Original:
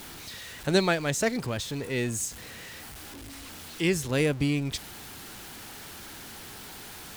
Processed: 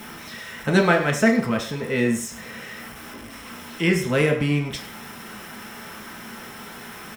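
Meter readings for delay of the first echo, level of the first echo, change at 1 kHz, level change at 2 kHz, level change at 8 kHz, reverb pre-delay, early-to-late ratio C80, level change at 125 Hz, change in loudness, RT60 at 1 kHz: 0.104 s, -14.5 dB, +8.0 dB, +8.0 dB, -1.0 dB, 3 ms, 11.5 dB, +5.5 dB, +6.5 dB, 0.55 s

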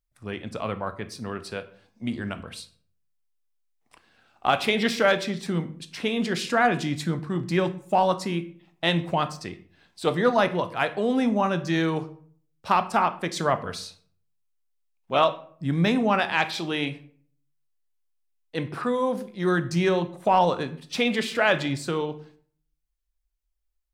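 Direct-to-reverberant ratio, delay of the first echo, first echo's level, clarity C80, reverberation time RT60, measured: 10.0 dB, none, none, 19.0 dB, 0.55 s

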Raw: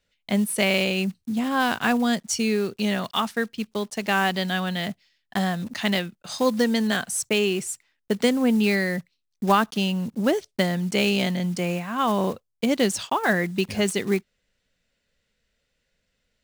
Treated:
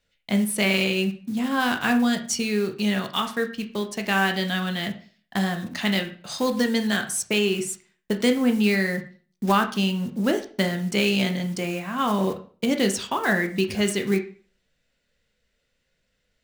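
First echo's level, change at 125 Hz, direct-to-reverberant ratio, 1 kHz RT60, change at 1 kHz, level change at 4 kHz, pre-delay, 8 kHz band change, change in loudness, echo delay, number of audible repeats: none, 0.0 dB, 5.0 dB, 0.40 s, -1.5 dB, +0.5 dB, 13 ms, 0.0 dB, 0.0 dB, none, none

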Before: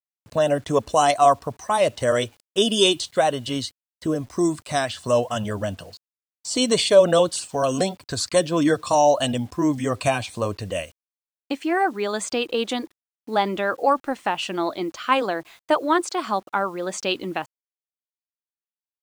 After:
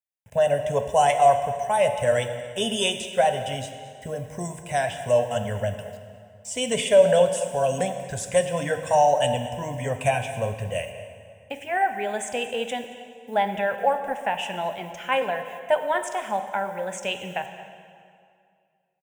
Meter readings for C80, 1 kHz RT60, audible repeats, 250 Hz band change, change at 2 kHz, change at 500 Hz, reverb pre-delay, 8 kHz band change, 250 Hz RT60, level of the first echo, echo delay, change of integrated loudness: 9.0 dB, 2.2 s, 1, -10.0 dB, -1.0 dB, -1.0 dB, 8 ms, -3.5 dB, 2.4 s, -19.0 dB, 0.225 s, -2.0 dB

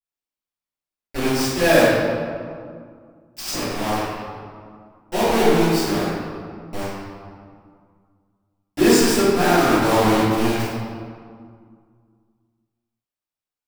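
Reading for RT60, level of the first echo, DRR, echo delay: 2.1 s, none, -16.0 dB, none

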